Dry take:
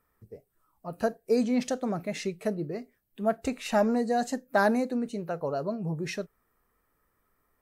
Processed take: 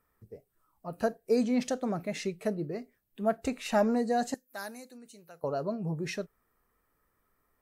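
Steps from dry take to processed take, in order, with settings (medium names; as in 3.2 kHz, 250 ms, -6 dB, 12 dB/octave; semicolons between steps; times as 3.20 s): 4.34–5.44 s: pre-emphasis filter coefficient 0.9; trim -1.5 dB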